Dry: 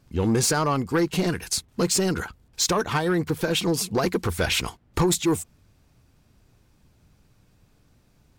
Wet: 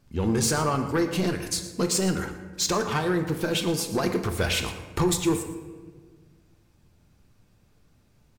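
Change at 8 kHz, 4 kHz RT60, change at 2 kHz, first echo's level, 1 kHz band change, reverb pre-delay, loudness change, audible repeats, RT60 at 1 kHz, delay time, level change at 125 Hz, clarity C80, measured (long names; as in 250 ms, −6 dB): −2.5 dB, 0.85 s, −2.0 dB, −15.5 dB, −2.0 dB, 5 ms, −2.0 dB, 1, 1.3 s, 117 ms, −1.5 dB, 10.0 dB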